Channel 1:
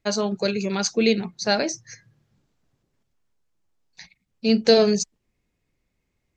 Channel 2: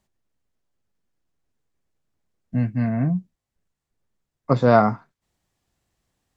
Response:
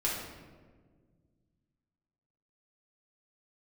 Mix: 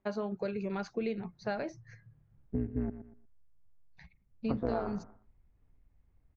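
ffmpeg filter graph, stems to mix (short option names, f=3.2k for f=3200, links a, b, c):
-filter_complex "[0:a]asubboost=boost=10.5:cutoff=100,volume=-6.5dB[a];[1:a]equalizer=f=260:t=o:w=0.48:g=9,aphaser=in_gain=1:out_gain=1:delay=3.2:decay=0.29:speed=0.71:type=sinusoidal,tremolo=f=180:d=0.919,volume=-4dB,asplit=3[b][c][d];[b]atrim=end=2.9,asetpts=PTS-STARTPTS,afade=t=out:st=2.896:d=0.004:c=hsin[e];[c]atrim=start=2.9:end=4.02,asetpts=PTS-STARTPTS,volume=0[f];[d]atrim=start=4.02,asetpts=PTS-STARTPTS,afade=t=in:d=0.004:c=hsin[g];[e][f][g]concat=n=3:v=0:a=1,asplit=2[h][i];[i]volume=-17dB,aecho=0:1:119|238|357:1|0.18|0.0324[j];[a][h][j]amix=inputs=3:normalize=0,lowpass=1.7k,acompressor=threshold=-31dB:ratio=4"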